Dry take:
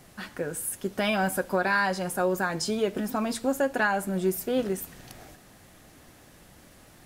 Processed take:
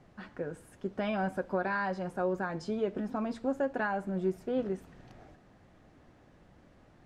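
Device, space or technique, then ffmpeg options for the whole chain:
through cloth: -af "lowpass=7.3k,highshelf=f=2.5k:g=-15.5,equalizer=f=9.9k:t=o:w=0.57:g=-3,volume=-4.5dB"

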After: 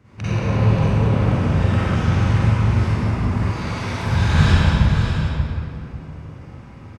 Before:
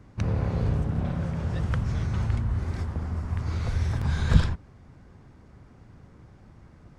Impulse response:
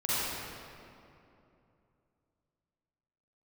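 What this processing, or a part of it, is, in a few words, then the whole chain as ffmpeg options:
PA in a hall: -filter_complex "[0:a]highpass=f=110:p=1,equalizer=f=2.6k:t=o:w=0.69:g=6,aecho=1:1:183:0.501[a];[1:a]atrim=start_sample=2205[b];[a][b]afir=irnorm=-1:irlink=0,asettb=1/sr,asplit=3[c][d][e];[c]atrim=end=3.514[f];[d]atrim=start=3.51:end=4.06,asetpts=PTS-STARTPTS,afade=t=in:d=0.004:c=qsin,afade=t=out:st=0.546:d=0.004:c=qsin,highpass=f=260:p=1[g];[e]atrim=start=4.056[h];[f][g]acrossfade=d=0.004:c1=hsin:c2=qsin[i];[i][h]acrossfade=d=0.004:c1=qsin:c2=hsin,aecho=1:1:46|584:0.562|0.473,volume=-1dB"

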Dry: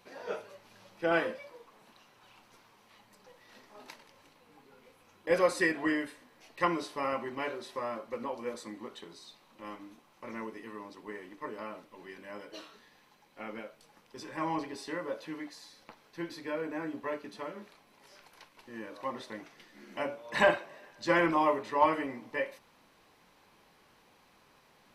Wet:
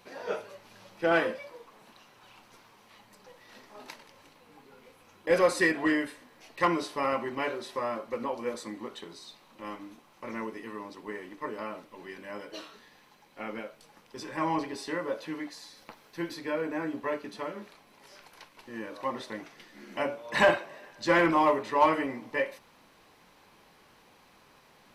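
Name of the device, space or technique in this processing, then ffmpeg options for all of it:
parallel distortion: -filter_complex "[0:a]asplit=2[a][b];[b]asoftclip=type=hard:threshold=-24dB,volume=-4.5dB[c];[a][c]amix=inputs=2:normalize=0,asettb=1/sr,asplit=3[d][e][f];[d]atrim=end=15.774[g];[e]atrim=start=15.77:end=16.34,asetpts=PTS-STARTPTS,afade=t=in:d=0.004:c=qsin,afade=t=out:st=0.566:d=0.004:c=qsin,highshelf=f=10k:g=7[h];[f]atrim=start=16.336[i];[g][h]acrossfade=d=0.004:c1=hsin:c2=qsin[j];[j][i]acrossfade=d=0.004:c1=qsin:c2=hsin"

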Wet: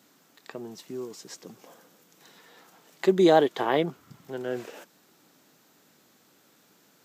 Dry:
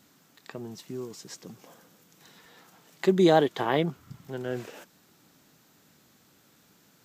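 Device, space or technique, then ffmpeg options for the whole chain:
filter by subtraction: -filter_complex "[0:a]asplit=2[a][b];[b]lowpass=400,volume=-1[c];[a][c]amix=inputs=2:normalize=0"

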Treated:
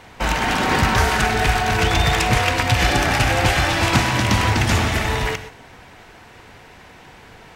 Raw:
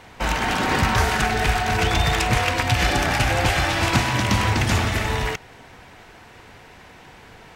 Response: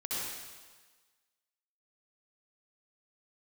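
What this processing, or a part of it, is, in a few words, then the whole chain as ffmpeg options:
keyed gated reverb: -filter_complex "[0:a]asplit=3[a][b][c];[1:a]atrim=start_sample=2205[d];[b][d]afir=irnorm=-1:irlink=0[e];[c]apad=whole_len=333181[f];[e][f]sidechaingate=range=-33dB:threshold=-40dB:ratio=16:detection=peak,volume=-15dB[g];[a][g]amix=inputs=2:normalize=0,volume=1.5dB"

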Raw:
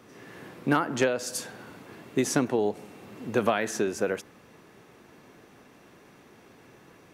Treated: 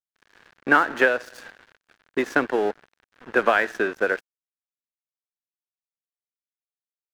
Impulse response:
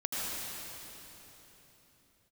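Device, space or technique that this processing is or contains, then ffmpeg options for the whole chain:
pocket radio on a weak battery: -af "highpass=340,lowpass=3.1k,aeval=exprs='sgn(val(0))*max(abs(val(0))-0.0075,0)':c=same,equalizer=f=1.6k:t=o:w=0.54:g=9.5,volume=5.5dB"

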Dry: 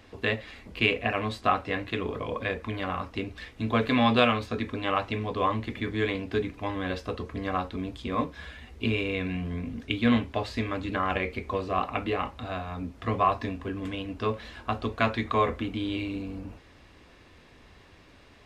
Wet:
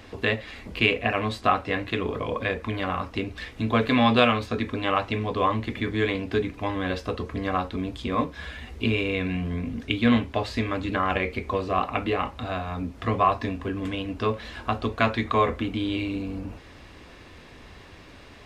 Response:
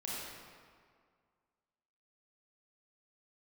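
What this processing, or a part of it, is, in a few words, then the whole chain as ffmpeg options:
parallel compression: -filter_complex "[0:a]asplit=2[a][b];[b]acompressor=threshold=-42dB:ratio=6,volume=-1.5dB[c];[a][c]amix=inputs=2:normalize=0,volume=2dB"

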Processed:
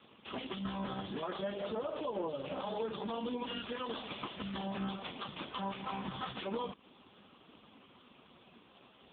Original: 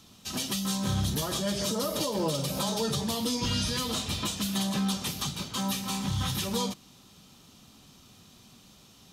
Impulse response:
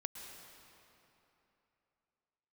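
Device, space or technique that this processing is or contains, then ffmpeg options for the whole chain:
voicemail: -af "highpass=320,lowpass=2.9k,acompressor=threshold=-39dB:ratio=10,volume=6.5dB" -ar 8000 -c:a libopencore_amrnb -b:a 4750

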